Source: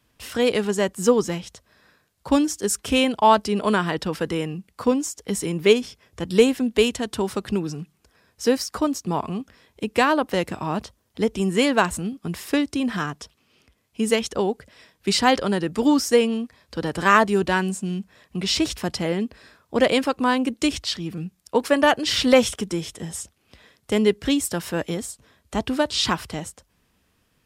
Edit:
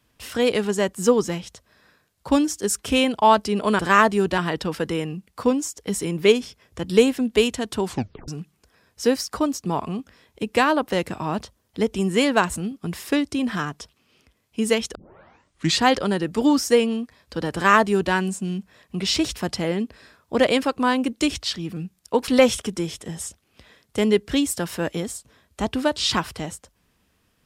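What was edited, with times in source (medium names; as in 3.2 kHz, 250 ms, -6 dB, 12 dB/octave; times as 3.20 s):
7.25 s: tape stop 0.44 s
14.36 s: tape start 0.88 s
16.95–17.54 s: copy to 3.79 s
21.69–22.22 s: delete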